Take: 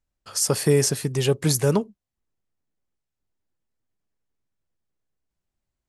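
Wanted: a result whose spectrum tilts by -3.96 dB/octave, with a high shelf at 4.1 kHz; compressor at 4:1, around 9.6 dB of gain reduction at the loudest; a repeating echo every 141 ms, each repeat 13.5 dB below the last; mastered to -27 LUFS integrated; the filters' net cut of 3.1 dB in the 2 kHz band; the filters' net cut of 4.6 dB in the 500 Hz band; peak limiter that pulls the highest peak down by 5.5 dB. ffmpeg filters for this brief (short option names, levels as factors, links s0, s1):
-af "equalizer=f=500:t=o:g=-5.5,equalizer=f=2000:t=o:g=-5.5,highshelf=f=4100:g=7.5,acompressor=threshold=0.0562:ratio=4,alimiter=limit=0.126:level=0:latency=1,aecho=1:1:141|282:0.211|0.0444,volume=1.26"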